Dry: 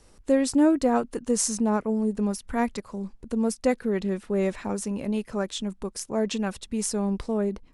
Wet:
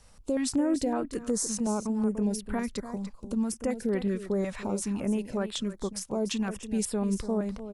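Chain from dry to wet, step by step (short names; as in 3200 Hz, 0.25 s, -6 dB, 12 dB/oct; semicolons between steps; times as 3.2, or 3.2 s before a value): limiter -19.5 dBFS, peak gain reduction 9.5 dB; echo 0.293 s -11.5 dB; stepped notch 5.4 Hz 350–6200 Hz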